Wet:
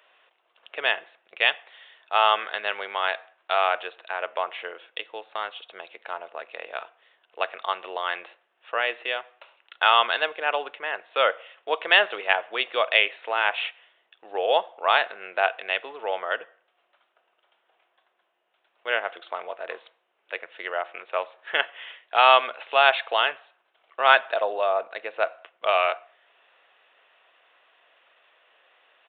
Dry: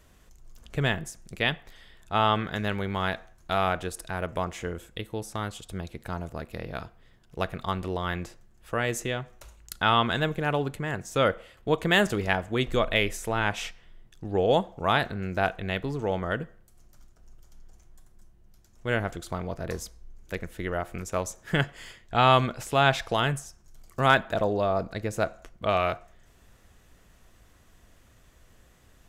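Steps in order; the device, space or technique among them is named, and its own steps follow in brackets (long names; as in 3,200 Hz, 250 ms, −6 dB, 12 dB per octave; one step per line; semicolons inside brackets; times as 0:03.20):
musical greeting card (downsampling to 8,000 Hz; high-pass filter 550 Hz 24 dB per octave; parametric band 2,700 Hz +6 dB 0.31 octaves)
level +4 dB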